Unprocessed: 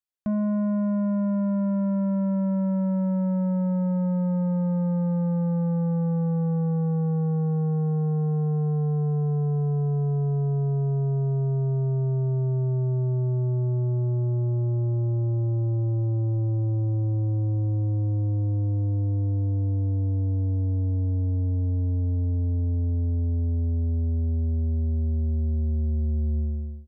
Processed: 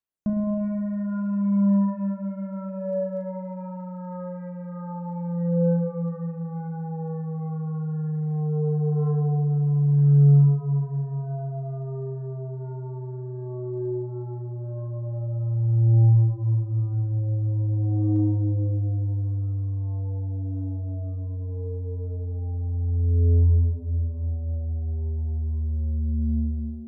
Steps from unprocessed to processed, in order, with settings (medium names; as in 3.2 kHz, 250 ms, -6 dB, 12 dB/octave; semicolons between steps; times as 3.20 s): spring tank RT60 2.7 s, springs 35 ms, chirp 30 ms, DRR 0.5 dB; phaser 0.11 Hz, delay 2.6 ms, feedback 63%; trim -5.5 dB